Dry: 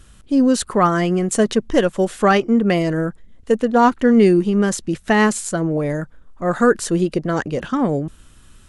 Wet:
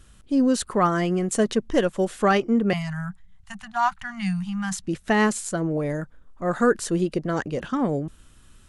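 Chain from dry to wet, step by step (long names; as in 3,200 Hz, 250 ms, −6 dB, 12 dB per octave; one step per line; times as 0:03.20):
0:02.73–0:04.84: Chebyshev band-stop filter 190–750 Hz, order 4
level −5 dB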